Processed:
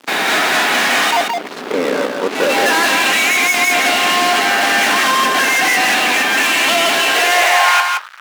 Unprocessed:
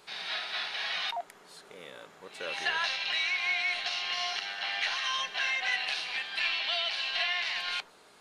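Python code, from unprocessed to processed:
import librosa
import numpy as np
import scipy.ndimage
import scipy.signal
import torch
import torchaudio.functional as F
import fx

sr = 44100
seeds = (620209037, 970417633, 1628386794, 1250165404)

p1 = scipy.signal.sosfilt(scipy.signal.butter(2, 1900.0, 'lowpass', fs=sr, output='sos'), x)
p2 = fx.quant_float(p1, sr, bits=4)
p3 = fx.hum_notches(p2, sr, base_hz=60, count=7)
p4 = fx.fuzz(p3, sr, gain_db=49.0, gate_db=-55.0)
p5 = fx.filter_sweep_highpass(p4, sr, from_hz=260.0, to_hz=1400.0, start_s=6.93, end_s=7.97, q=3.0)
p6 = p5 + fx.echo_single(p5, sr, ms=170, db=-4.5, dry=0)
y = F.gain(torch.from_numpy(p6), -1.0).numpy()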